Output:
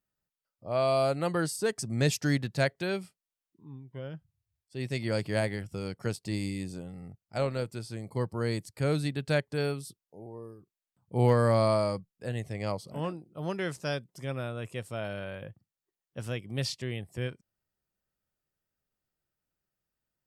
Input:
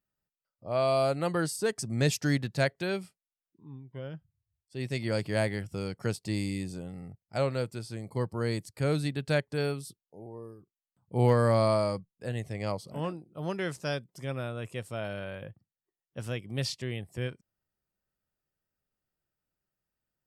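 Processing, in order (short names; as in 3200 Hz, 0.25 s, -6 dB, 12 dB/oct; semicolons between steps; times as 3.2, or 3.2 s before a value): 5.39–7.7 AM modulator 92 Hz, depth 15%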